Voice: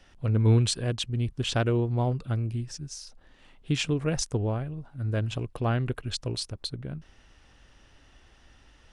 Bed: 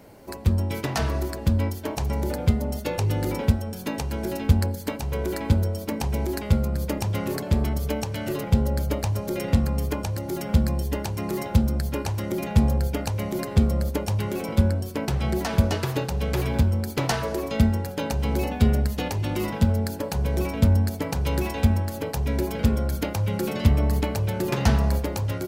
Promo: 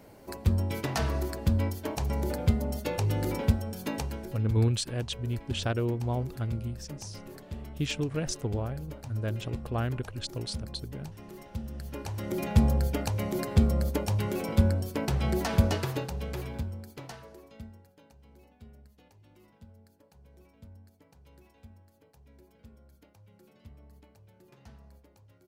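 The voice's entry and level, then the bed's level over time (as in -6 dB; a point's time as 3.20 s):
4.10 s, -4.0 dB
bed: 4.04 s -4 dB
4.41 s -18 dB
11.54 s -18 dB
12.43 s -3 dB
15.70 s -3 dB
18.19 s -32.5 dB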